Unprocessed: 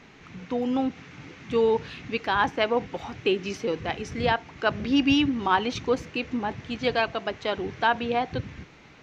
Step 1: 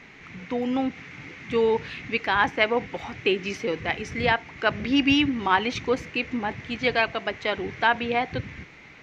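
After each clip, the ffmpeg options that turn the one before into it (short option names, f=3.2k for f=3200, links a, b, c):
-af "equalizer=f=2.1k:w=2.4:g=9"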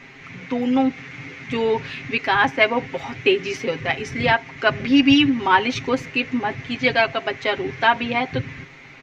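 -af "aecho=1:1:7.5:0.75,volume=2.5dB"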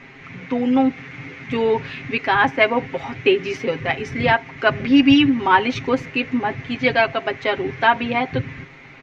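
-af "highshelf=f=4.2k:g=-10,volume=2dB"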